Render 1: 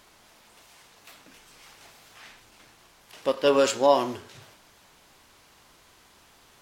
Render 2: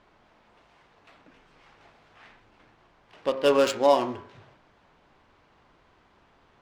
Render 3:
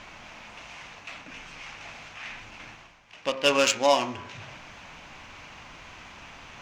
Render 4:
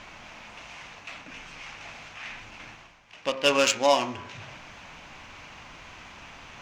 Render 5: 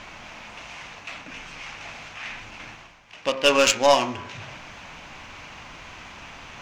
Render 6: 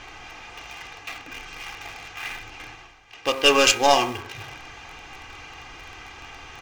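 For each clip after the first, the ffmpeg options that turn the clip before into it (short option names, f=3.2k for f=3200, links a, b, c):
-af "adynamicsmooth=sensitivity=4:basefreq=2.1k,bandreject=f=66.53:t=h:w=4,bandreject=f=133.06:t=h:w=4,bandreject=f=199.59:t=h:w=4,bandreject=f=266.12:t=h:w=4,bandreject=f=332.65:t=h:w=4,bandreject=f=399.18:t=h:w=4,bandreject=f=465.71:t=h:w=4,bandreject=f=532.24:t=h:w=4,bandreject=f=598.77:t=h:w=4,bandreject=f=665.3:t=h:w=4,bandreject=f=731.83:t=h:w=4,bandreject=f=798.36:t=h:w=4,bandreject=f=864.89:t=h:w=4,bandreject=f=931.42:t=h:w=4,bandreject=f=997.95:t=h:w=4,bandreject=f=1.06448k:t=h:w=4,bandreject=f=1.13101k:t=h:w=4,bandreject=f=1.19754k:t=h:w=4,bandreject=f=1.26407k:t=h:w=4,bandreject=f=1.3306k:t=h:w=4,bandreject=f=1.39713k:t=h:w=4,bandreject=f=1.46366k:t=h:w=4,bandreject=f=1.53019k:t=h:w=4,bandreject=f=1.59672k:t=h:w=4,bandreject=f=1.66325k:t=h:w=4,bandreject=f=1.72978k:t=h:w=4,bandreject=f=1.79631k:t=h:w=4,bandreject=f=1.86284k:t=h:w=4,bandreject=f=1.92937k:t=h:w=4,bandreject=f=1.9959k:t=h:w=4,bandreject=f=2.06243k:t=h:w=4,bandreject=f=2.12896k:t=h:w=4,bandreject=f=2.19549k:t=h:w=4,bandreject=f=2.26202k:t=h:w=4,bandreject=f=2.32855k:t=h:w=4,bandreject=f=2.39508k:t=h:w=4,bandreject=f=2.46161k:t=h:w=4,bandreject=f=2.52814k:t=h:w=4"
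-af "areverse,acompressor=mode=upward:threshold=-34dB:ratio=2.5,areverse,equalizer=f=400:t=o:w=0.67:g=-8,equalizer=f=2.5k:t=o:w=0.67:g=10,equalizer=f=6.3k:t=o:w=0.67:g=12"
-af anull
-af "aeval=exprs='0.501*(cos(1*acos(clip(val(0)/0.501,-1,1)))-cos(1*PI/2))+0.0891*(cos(2*acos(clip(val(0)/0.501,-1,1)))-cos(2*PI/2))':c=same,volume=4dB"
-filter_complex "[0:a]aecho=1:1:2.5:0.68,asplit=2[a][b];[b]acrusher=bits=4:mix=0:aa=0.000001,volume=-10dB[c];[a][c]amix=inputs=2:normalize=0,volume=-1.5dB"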